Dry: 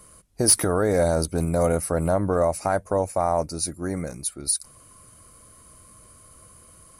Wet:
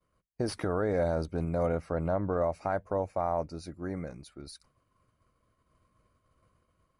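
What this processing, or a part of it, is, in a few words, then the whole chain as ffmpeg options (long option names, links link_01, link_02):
hearing-loss simulation: -filter_complex "[0:a]lowpass=3100,agate=range=-33dB:threshold=-46dB:ratio=3:detection=peak,asettb=1/sr,asplit=3[link_01][link_02][link_03];[link_01]atrim=end=1.684[link_04];[link_02]atrim=start=1.68:end=2.4,asetpts=PTS-STARTPTS,afade=type=in:duration=0.004:curve=qsin,afade=type=out:start_time=0.716:duration=0.004:curve=qsin,lowpass=8000[link_05];[link_03]atrim=start=2.396[link_06];[link_04][link_05]acrossfade=duration=0.004:curve1=hsin:curve2=qsin[link_07];[link_07][link_06]acrossfade=duration=0.004:curve1=qsin:curve2=hsin,volume=-7.5dB"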